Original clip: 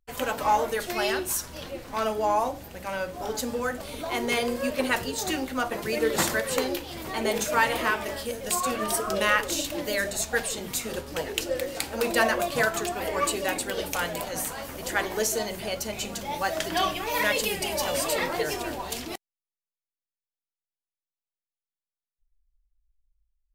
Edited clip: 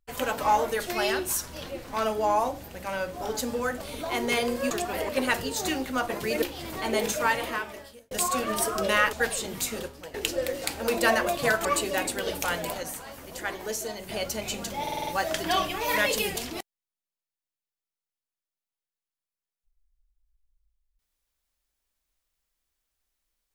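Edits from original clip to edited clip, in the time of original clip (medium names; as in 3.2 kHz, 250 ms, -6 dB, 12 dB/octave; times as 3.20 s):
6.04–6.74 s: delete
7.36–8.43 s: fade out
9.45–10.26 s: delete
10.89–11.27 s: fade out quadratic, to -13 dB
12.78–13.16 s: move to 4.71 s
14.34–15.60 s: gain -6 dB
16.33 s: stutter 0.05 s, 6 plays
17.62–18.91 s: delete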